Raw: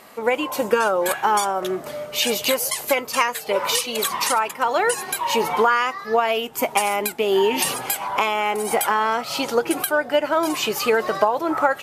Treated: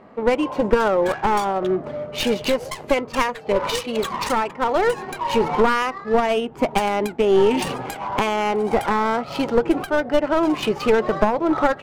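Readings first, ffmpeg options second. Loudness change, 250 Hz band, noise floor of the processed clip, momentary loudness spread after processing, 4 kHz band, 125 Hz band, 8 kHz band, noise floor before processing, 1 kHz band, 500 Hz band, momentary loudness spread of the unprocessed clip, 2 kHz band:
0.0 dB, +6.0 dB, −39 dBFS, 6 LU, −4.5 dB, +9.0 dB, −11.5 dB, −37 dBFS, −1.0 dB, +2.0 dB, 4 LU, −3.0 dB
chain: -af "adynamicsmooth=sensitivity=2:basefreq=1600,aeval=exprs='clip(val(0),-1,0.112)':channel_layout=same,lowshelf=frequency=480:gain=10.5,volume=-2dB"

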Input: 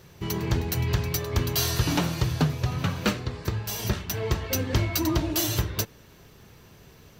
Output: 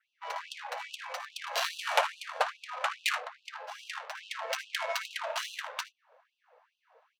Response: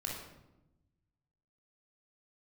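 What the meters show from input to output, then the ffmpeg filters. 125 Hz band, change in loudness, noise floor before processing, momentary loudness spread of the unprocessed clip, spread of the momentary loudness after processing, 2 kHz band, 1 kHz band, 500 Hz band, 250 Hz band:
below −40 dB, −8.0 dB, −52 dBFS, 6 LU, 11 LU, +0.5 dB, +1.5 dB, −7.0 dB, below −40 dB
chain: -af "aecho=1:1:57|78:0.316|0.355,adynamicsmooth=sensitivity=2.5:basefreq=650,adynamicequalizer=threshold=0.00158:dfrequency=4800:dqfactor=2.3:tfrequency=4800:tqfactor=2.3:attack=5:release=100:ratio=0.375:range=2:mode=cutabove:tftype=bell,afftfilt=real='re*gte(b*sr/1024,450*pow(2600/450,0.5+0.5*sin(2*PI*2.4*pts/sr)))':imag='im*gte(b*sr/1024,450*pow(2600/450,0.5+0.5*sin(2*PI*2.4*pts/sr)))':win_size=1024:overlap=0.75,volume=5dB"

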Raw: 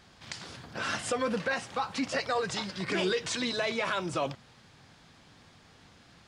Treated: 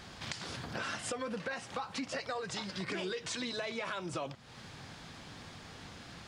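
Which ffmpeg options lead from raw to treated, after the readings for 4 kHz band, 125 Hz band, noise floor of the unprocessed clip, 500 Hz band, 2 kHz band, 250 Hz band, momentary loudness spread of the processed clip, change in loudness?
−5.5 dB, −4.0 dB, −58 dBFS, −8.0 dB, −6.5 dB, −6.5 dB, 12 LU, −8.0 dB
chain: -af "acompressor=threshold=-46dB:ratio=4,volume=7.5dB"

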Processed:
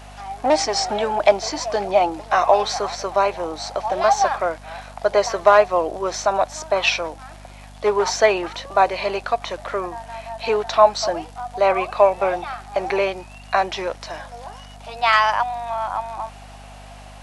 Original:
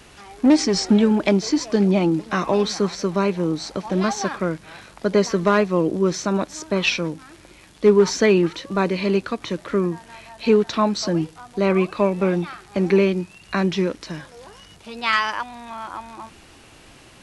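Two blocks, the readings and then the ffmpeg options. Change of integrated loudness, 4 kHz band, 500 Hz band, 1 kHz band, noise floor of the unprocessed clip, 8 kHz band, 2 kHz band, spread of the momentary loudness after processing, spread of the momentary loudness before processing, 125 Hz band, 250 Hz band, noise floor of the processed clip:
+0.5 dB, +1.5 dB, +1.5 dB, +8.5 dB, −48 dBFS, +1.0 dB, +2.5 dB, 16 LU, 13 LU, −13.5 dB, −14.0 dB, −41 dBFS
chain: -af "highpass=frequency=710:width_type=q:width=4.9,aeval=exprs='val(0)+0.00794*(sin(2*PI*50*n/s)+sin(2*PI*2*50*n/s)/2+sin(2*PI*3*50*n/s)/3+sin(2*PI*4*50*n/s)/4+sin(2*PI*5*50*n/s)/5)':channel_layout=same,volume=1dB"

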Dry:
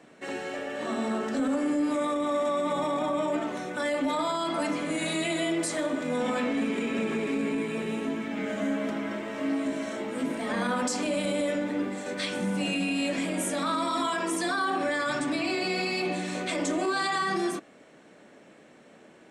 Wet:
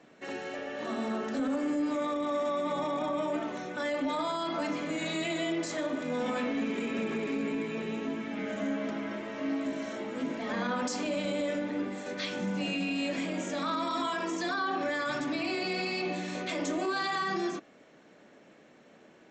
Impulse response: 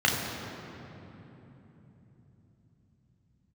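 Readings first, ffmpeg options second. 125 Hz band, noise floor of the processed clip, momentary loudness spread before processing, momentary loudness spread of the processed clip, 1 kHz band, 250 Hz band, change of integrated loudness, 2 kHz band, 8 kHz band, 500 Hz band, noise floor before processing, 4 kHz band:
−3.5 dB, −57 dBFS, 5 LU, 5 LU, −3.5 dB, −3.5 dB, −3.5 dB, −3.5 dB, −8.0 dB, −3.5 dB, −54 dBFS, −3.5 dB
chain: -af "volume=-3.5dB" -ar 16000 -c:a sbc -b:a 64k

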